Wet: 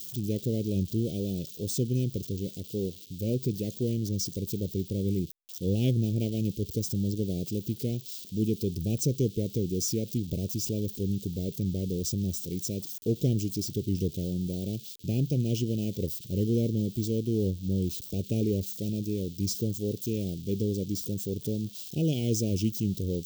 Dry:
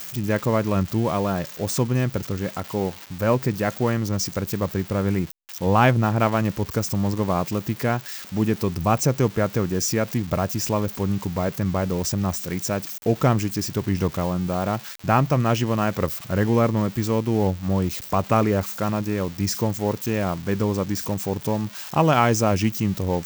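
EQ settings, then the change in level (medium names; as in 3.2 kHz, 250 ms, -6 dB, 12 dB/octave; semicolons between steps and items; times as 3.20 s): elliptic band-stop 430–3300 Hz, stop band 70 dB; -5.0 dB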